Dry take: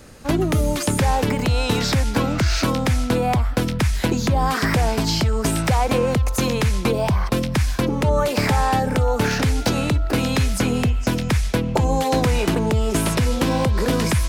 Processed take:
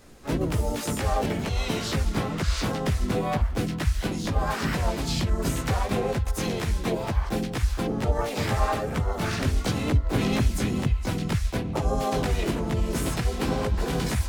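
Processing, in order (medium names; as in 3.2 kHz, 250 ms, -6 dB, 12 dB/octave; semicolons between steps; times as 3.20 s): chorus voices 4, 1.1 Hz, delay 16 ms, depth 3 ms; harmony voices -4 st -2 dB, +5 st -12 dB, +7 st -7 dB; trim -7 dB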